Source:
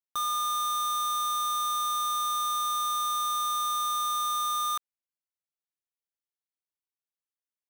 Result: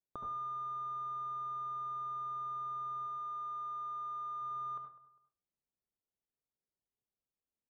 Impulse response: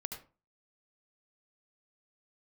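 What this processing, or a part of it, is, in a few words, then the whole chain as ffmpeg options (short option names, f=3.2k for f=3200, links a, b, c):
television next door: -filter_complex "[0:a]asettb=1/sr,asplit=3[a][b][c];[a]atrim=end=3.064[d];[b]atrim=start=3.06:end=4.42,asetpts=PTS-STARTPTS,afade=t=in:d=0.004:c=qsin,afade=t=out:st=1.356:d=0.004:c=qsin,highpass=f=270:p=1[e];[c]atrim=start=4.416[f];[d][e]acrossfade=d=0.004:c1=hsin:c2=qsin[g];[g][f]acrossfade=d=0.004:c1=qsin:c2=hsin,asplit=2[h][i];[i]adelay=201,lowpass=f=2k:p=1,volume=-23.5dB,asplit=2[j][k];[k]adelay=201,lowpass=f=2k:p=1,volume=0.35[l];[h][j][l]amix=inputs=3:normalize=0,acompressor=threshold=-37dB:ratio=6,lowpass=570[m];[1:a]atrim=start_sample=2205[n];[m][n]afir=irnorm=-1:irlink=0,volume=8dB"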